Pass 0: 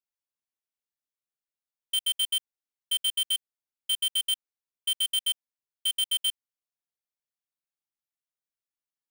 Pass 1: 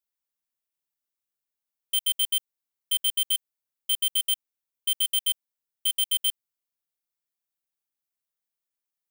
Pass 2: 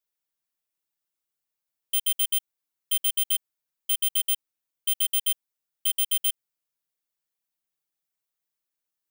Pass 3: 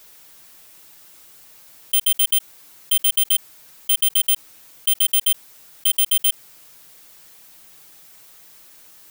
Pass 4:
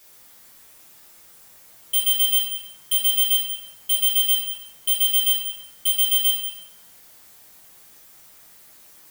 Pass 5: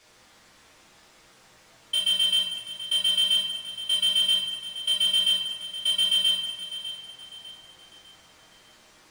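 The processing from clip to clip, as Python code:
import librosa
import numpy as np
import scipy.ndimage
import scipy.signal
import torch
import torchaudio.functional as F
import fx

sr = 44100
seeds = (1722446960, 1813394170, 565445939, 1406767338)

y1 = fx.high_shelf(x, sr, hz=11000.0, db=9.5)
y2 = y1 + 0.72 * np.pad(y1, (int(6.3 * sr / 1000.0), 0))[:len(y1)]
y3 = fx.env_flatten(y2, sr, amount_pct=50)
y3 = F.gain(torch.from_numpy(y3), 6.5).numpy()
y4 = y3 + 10.0 ** (-12.0 / 20.0) * np.pad(y3, (int(189 * sr / 1000.0), 0))[:len(y3)]
y4 = fx.rev_fdn(y4, sr, rt60_s=1.1, lf_ratio=1.2, hf_ratio=0.6, size_ms=78.0, drr_db=-4.0)
y4 = F.gain(torch.from_numpy(y4), -6.0).numpy()
y5 = fx.air_absorb(y4, sr, metres=100.0)
y5 = fx.echo_feedback(y5, sr, ms=601, feedback_pct=39, wet_db=-12.5)
y5 = F.gain(torch.from_numpy(y5), 3.0).numpy()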